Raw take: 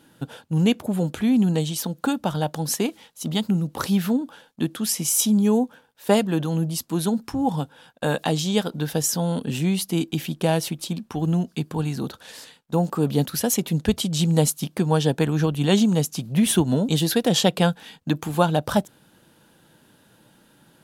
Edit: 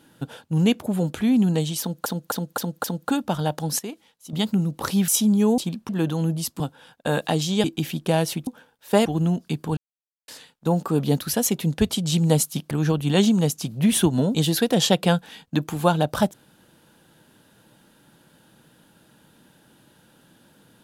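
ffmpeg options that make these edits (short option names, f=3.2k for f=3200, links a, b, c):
-filter_complex "[0:a]asplit=17[a][b][c][d][e][f][g][h][i][j][k][l][m][n][o][p][q];[a]atrim=end=2.062[r];[b]atrim=start=1.798:end=2.062[s];[c]atrim=start=1.798:end=2.062[t];[d]atrim=start=1.798:end=2.062[u];[e]atrim=start=1.798:end=2.752[v];[f]atrim=start=2.748:end=3.292,asetpts=PTS-STARTPTS,volume=-10dB[w];[g]atrim=start=3.288:end=4.042[x];[h]atrim=start=5.128:end=5.632[y];[i]atrim=start=10.818:end=11.132[z];[j]atrim=start=6.218:end=6.932[aa];[k]atrim=start=7.568:end=8.612[ab];[l]atrim=start=9.988:end=10.822[ac];[m]atrim=start=5.628:end=6.222[ad];[n]atrim=start=11.128:end=11.84,asetpts=PTS-STARTPTS,afade=t=out:st=0.708:d=0.004:c=hsin[ae];[o]atrim=start=11.84:end=12.35,asetpts=PTS-STARTPTS,volume=0[af];[p]atrim=start=12.35:end=14.782,asetpts=PTS-STARTPTS,afade=t=in:d=0.004:c=hsin[ag];[q]atrim=start=15.248[ah];[r][s]acrossfade=d=0.004:c1=hsin:c2=hsin[ai];[ai][t]acrossfade=d=0.004:c1=hsin:c2=hsin[aj];[aj][u]acrossfade=d=0.004:c1=hsin:c2=hsin[ak];[ak][v]acrossfade=d=0.004:c1=hsin:c2=hsin[al];[al][w]acrossfade=d=0.004:c1=hsin:c2=hsin[am];[am][x]acrossfade=d=0.004:c1=hsin:c2=hsin[an];[an][y]acrossfade=d=0.004:c1=hsin:c2=hsin[ao];[ao][z]acrossfade=d=0.004:c1=hsin:c2=hsin[ap];[ap][aa]acrossfade=d=0.004:c1=hsin:c2=hsin[aq];[aq][ab]acrossfade=d=0.004:c1=hsin:c2=hsin[ar];[ar][ac]acrossfade=d=0.004:c1=hsin:c2=hsin[as];[as][ad]acrossfade=d=0.004:c1=hsin:c2=hsin[at];[ae][af][ag]concat=n=3:v=0:a=1[au];[at][au]acrossfade=d=0.004:c1=hsin:c2=hsin[av];[av][ah]acrossfade=d=0.004:c1=hsin:c2=hsin"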